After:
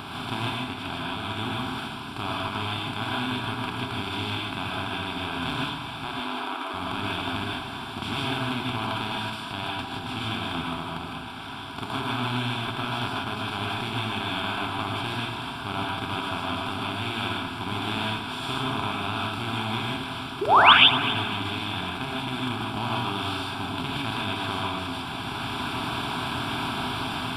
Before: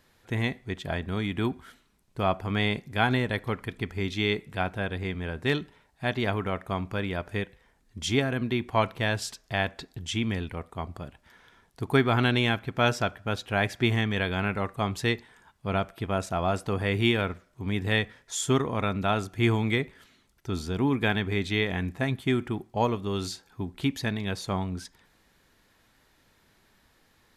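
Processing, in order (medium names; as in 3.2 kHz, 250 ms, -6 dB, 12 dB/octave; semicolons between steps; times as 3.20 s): spectral levelling over time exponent 0.2; transient shaper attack +3 dB, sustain -5 dB; level rider gain up to 4 dB; 6.04–6.74 s: rippled Chebyshev high-pass 250 Hz, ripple 3 dB; 20.41–20.73 s: painted sound rise 350–3800 Hz -3 dBFS; static phaser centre 1.9 kHz, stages 6; on a send: multi-head delay 83 ms, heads first and third, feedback 53%, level -15 dB; on the sum: gated-style reverb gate 180 ms rising, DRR -2.5 dB; trim -11.5 dB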